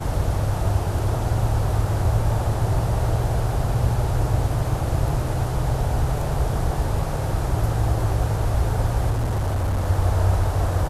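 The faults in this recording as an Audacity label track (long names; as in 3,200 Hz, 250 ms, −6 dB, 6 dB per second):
9.100000	9.880000	clipping −19 dBFS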